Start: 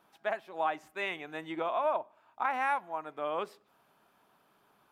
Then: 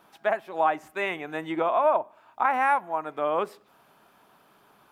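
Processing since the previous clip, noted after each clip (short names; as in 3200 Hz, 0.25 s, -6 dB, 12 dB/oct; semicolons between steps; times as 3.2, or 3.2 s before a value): dynamic EQ 4200 Hz, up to -8 dB, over -52 dBFS, Q 0.82; gain +8.5 dB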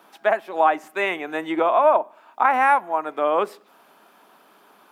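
HPF 210 Hz 24 dB/oct; gain +5.5 dB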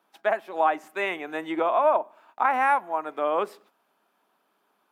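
gate -49 dBFS, range -12 dB; gain -4.5 dB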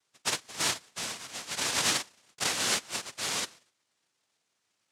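noise vocoder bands 1; gain -7.5 dB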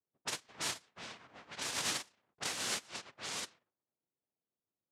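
low-pass opened by the level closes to 510 Hz, open at -27.5 dBFS; gain -8.5 dB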